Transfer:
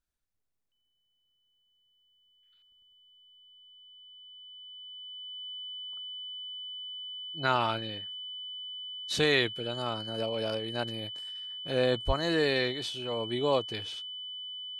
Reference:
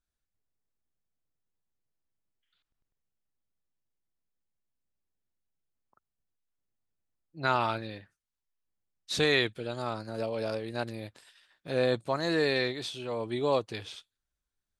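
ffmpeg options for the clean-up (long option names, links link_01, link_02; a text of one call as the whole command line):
ffmpeg -i in.wav -filter_complex "[0:a]bandreject=frequency=3000:width=30,asplit=3[link_01][link_02][link_03];[link_01]afade=type=out:start_time=12.06:duration=0.02[link_04];[link_02]highpass=frequency=140:width=0.5412,highpass=frequency=140:width=1.3066,afade=type=in:start_time=12.06:duration=0.02,afade=type=out:start_time=12.18:duration=0.02[link_05];[link_03]afade=type=in:start_time=12.18:duration=0.02[link_06];[link_04][link_05][link_06]amix=inputs=3:normalize=0" out.wav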